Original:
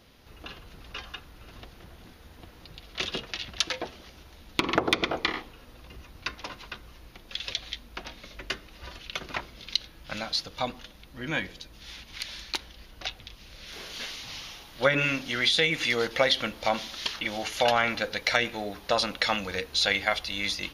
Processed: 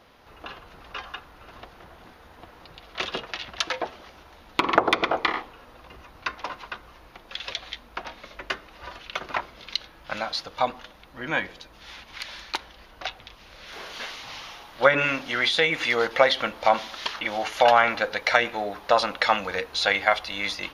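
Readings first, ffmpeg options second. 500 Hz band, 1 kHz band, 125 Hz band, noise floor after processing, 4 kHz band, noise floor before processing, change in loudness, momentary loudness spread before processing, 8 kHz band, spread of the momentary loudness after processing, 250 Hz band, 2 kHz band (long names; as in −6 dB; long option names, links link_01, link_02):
+5.0 dB, +7.5 dB, −3.0 dB, −51 dBFS, −0.5 dB, −51 dBFS, +3.5 dB, 20 LU, −3.0 dB, 20 LU, 0.0 dB, +3.5 dB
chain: -af "equalizer=frequency=960:width=0.47:gain=13,volume=-4.5dB"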